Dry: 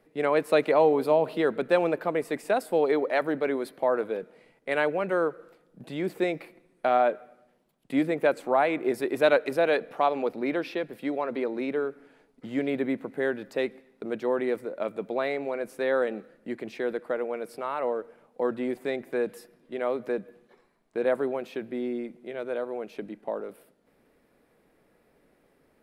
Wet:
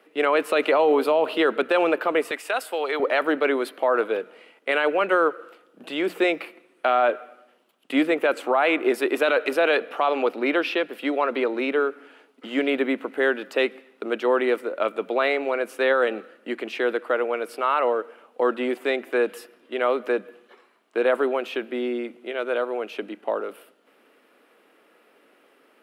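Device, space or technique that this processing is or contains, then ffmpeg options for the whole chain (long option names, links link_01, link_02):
laptop speaker: -filter_complex "[0:a]highpass=frequency=260:width=0.5412,highpass=frequency=260:width=1.3066,equalizer=frequency=1300:width_type=o:width=0.59:gain=7.5,equalizer=frequency=2900:width_type=o:width=0.52:gain=10.5,alimiter=limit=-16.5dB:level=0:latency=1:release=16,bandreject=frequency=60:width_type=h:width=6,bandreject=frequency=120:width_type=h:width=6,bandreject=frequency=180:width_type=h:width=6,asettb=1/sr,asplit=3[link_01][link_02][link_03];[link_01]atrim=end=2.314[link_04];[link_02]atrim=start=2.31:end=3,asetpts=PTS-STARTPTS,afade=type=in:duration=0.004:curve=qsin,afade=type=out:start_time=0.686:duration=0.004:curve=qsin,highpass=frequency=1100:poles=1[link_05];[link_03]atrim=start=2.996[link_06];[link_04][link_05]acrossfade=duration=0.004:curve1=hsin:curve2=qsin[link_07];[link_07][link_06]acrossfade=duration=0.004:curve1=qsin:curve2=hsin,volume=5.5dB"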